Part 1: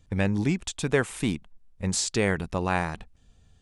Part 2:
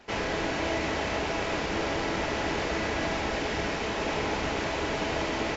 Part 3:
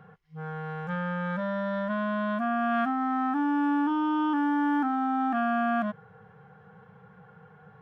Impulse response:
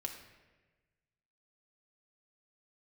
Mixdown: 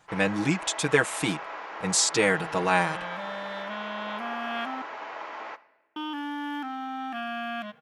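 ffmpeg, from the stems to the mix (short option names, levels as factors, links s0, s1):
-filter_complex "[0:a]aecho=1:1:6.3:0.99,volume=1.26[s0];[1:a]bandpass=f=1100:t=q:w=1.7:csg=0,volume=0.708,asplit=2[s1][s2];[s2]volume=0.422[s3];[2:a]highshelf=f=1900:t=q:w=1.5:g=10,adelay=1800,volume=0.562,asplit=3[s4][s5][s6];[s4]atrim=end=4.82,asetpts=PTS-STARTPTS,afade=t=out:st=4.816:d=0.004:c=hsin[s7];[s5]atrim=start=4.82:end=5.96,asetpts=PTS-STARTPTS,volume=0[s8];[s6]atrim=start=5.96,asetpts=PTS-STARTPTS,afade=t=in:d=0.004:c=hsin[s9];[s7][s8][s9]concat=n=3:v=0:a=1,asplit=2[s10][s11];[s11]volume=0.188[s12];[3:a]atrim=start_sample=2205[s13];[s3][s12]amix=inputs=2:normalize=0[s14];[s14][s13]afir=irnorm=-1:irlink=0[s15];[s0][s1][s10][s15]amix=inputs=4:normalize=0,highpass=f=440:p=1"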